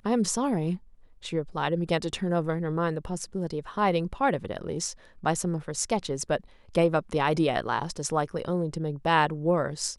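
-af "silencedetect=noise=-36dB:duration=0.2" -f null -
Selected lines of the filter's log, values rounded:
silence_start: 0.77
silence_end: 1.24 | silence_duration: 0.48
silence_start: 4.92
silence_end: 5.24 | silence_duration: 0.31
silence_start: 6.40
silence_end: 6.75 | silence_duration: 0.35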